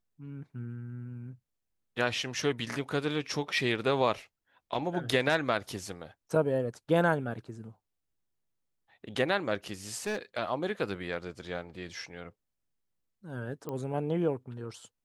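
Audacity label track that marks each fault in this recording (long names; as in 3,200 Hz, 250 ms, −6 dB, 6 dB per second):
9.950000	10.170000	clipping −28.5 dBFS
13.690000	13.690000	click −24 dBFS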